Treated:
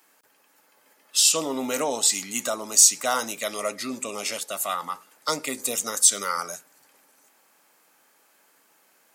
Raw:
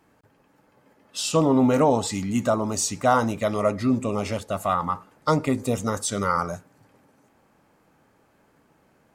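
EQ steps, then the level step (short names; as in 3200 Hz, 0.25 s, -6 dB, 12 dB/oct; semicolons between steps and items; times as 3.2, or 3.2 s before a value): HPF 210 Hz 12 dB/oct; tilt +4.5 dB/oct; dynamic EQ 990 Hz, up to -6 dB, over -37 dBFS, Q 1.2; -1.0 dB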